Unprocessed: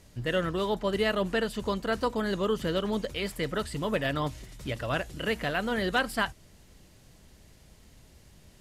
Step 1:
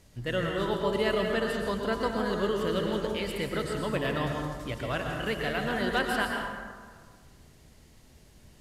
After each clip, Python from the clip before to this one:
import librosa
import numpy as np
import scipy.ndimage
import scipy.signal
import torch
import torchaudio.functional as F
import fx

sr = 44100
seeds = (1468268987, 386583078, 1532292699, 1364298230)

y = fx.rev_plate(x, sr, seeds[0], rt60_s=1.6, hf_ratio=0.5, predelay_ms=100, drr_db=1.0)
y = y * librosa.db_to_amplitude(-2.5)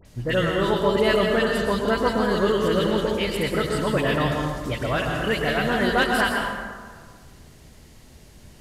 y = fx.dispersion(x, sr, late='highs', ms=54.0, hz=2000.0)
y = y * librosa.db_to_amplitude(7.5)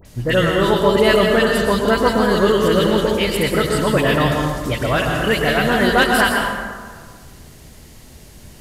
y = fx.high_shelf(x, sr, hz=9800.0, db=7.5)
y = y * librosa.db_to_amplitude(6.0)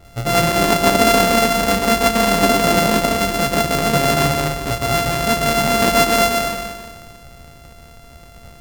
y = np.r_[np.sort(x[:len(x) // 64 * 64].reshape(-1, 64), axis=1).ravel(), x[len(x) // 64 * 64:]]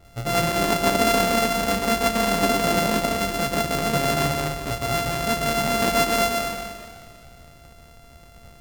y = fx.echo_warbled(x, sr, ms=200, feedback_pct=62, rate_hz=2.8, cents=206, wet_db=-24.0)
y = y * librosa.db_to_amplitude(-6.0)